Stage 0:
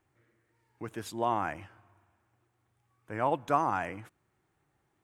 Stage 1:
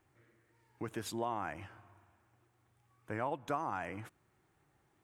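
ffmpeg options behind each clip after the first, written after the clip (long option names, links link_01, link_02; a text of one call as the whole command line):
ffmpeg -i in.wav -af "acompressor=threshold=-38dB:ratio=3,volume=2dB" out.wav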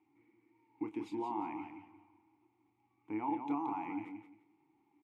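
ffmpeg -i in.wav -filter_complex "[0:a]asplit=3[link_01][link_02][link_03];[link_01]bandpass=frequency=300:width_type=q:width=8,volume=0dB[link_04];[link_02]bandpass=frequency=870:width_type=q:width=8,volume=-6dB[link_05];[link_03]bandpass=frequency=2240:width_type=q:width=8,volume=-9dB[link_06];[link_04][link_05][link_06]amix=inputs=3:normalize=0,asplit=2[link_07][link_08];[link_08]adelay=28,volume=-9dB[link_09];[link_07][link_09]amix=inputs=2:normalize=0,aecho=1:1:175|350|525:0.447|0.0983|0.0216,volume=10dB" out.wav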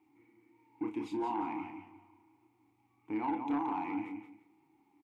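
ffmpeg -i in.wav -filter_complex "[0:a]asplit=2[link_01][link_02];[link_02]adelay=32,volume=-6.5dB[link_03];[link_01][link_03]amix=inputs=2:normalize=0,asoftclip=type=tanh:threshold=-29.5dB,volume=3.5dB" out.wav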